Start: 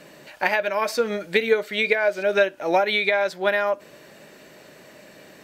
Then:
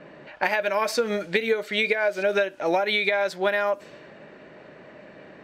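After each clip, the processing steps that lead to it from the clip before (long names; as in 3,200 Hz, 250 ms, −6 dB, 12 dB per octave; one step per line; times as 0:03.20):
downward compressor, threshold −21 dBFS, peak gain reduction 8 dB
low-pass that shuts in the quiet parts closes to 1,700 Hz, open at −23.5 dBFS
level +2 dB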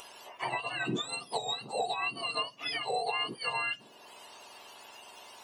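frequency axis turned over on the octave scale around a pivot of 1,300 Hz
upward compression, threshold −34 dBFS
level −7.5 dB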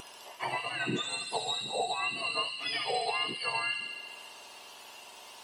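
tape wow and flutter 18 cents
delay with a high-pass on its return 69 ms, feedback 77%, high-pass 2,700 Hz, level −3.5 dB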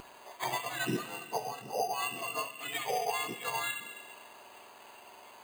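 on a send at −15.5 dB: convolution reverb RT60 1.5 s, pre-delay 3 ms
on the sum: bad sample-rate conversion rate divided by 8×, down filtered, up hold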